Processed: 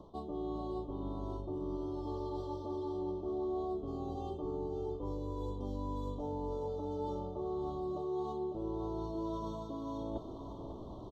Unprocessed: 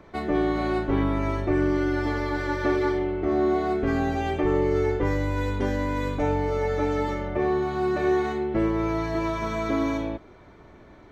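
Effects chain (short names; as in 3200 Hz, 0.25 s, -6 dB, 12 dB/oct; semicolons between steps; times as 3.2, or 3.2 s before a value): elliptic band-stop 1100–3300 Hz, stop band 40 dB; high shelf 4300 Hz -7.5 dB; reverse; compressor 20:1, threshold -39 dBFS, peak gain reduction 21 dB; reverse; doubler 16 ms -13 dB; echo 0.552 s -9 dB; gain +3 dB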